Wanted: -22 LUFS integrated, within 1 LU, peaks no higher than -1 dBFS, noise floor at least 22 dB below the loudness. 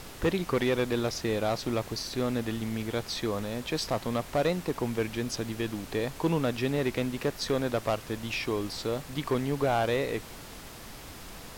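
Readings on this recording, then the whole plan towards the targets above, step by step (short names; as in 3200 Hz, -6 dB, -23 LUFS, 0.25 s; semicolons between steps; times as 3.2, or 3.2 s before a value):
clipped 0.6%; flat tops at -19.5 dBFS; noise floor -45 dBFS; noise floor target -53 dBFS; loudness -30.5 LUFS; peak -19.5 dBFS; loudness target -22.0 LUFS
-> clip repair -19.5 dBFS; noise print and reduce 8 dB; gain +8.5 dB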